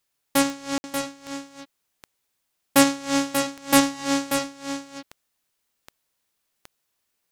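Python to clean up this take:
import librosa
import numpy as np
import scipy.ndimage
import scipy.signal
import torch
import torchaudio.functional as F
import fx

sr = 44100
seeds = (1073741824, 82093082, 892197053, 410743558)

y = fx.fix_declick_ar(x, sr, threshold=10.0)
y = fx.fix_ambience(y, sr, seeds[0], print_start_s=2.19, print_end_s=2.69, start_s=0.78, end_s=0.84)
y = fx.fix_echo_inverse(y, sr, delay_ms=586, level_db=-7.5)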